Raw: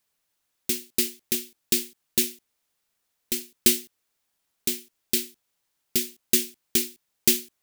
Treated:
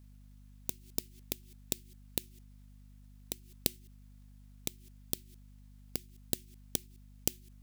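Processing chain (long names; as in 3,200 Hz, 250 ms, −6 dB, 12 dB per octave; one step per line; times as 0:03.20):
gate with flip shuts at −20 dBFS, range −33 dB
surface crackle 180 per second −65 dBFS
mains hum 50 Hz, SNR 12 dB
level +1 dB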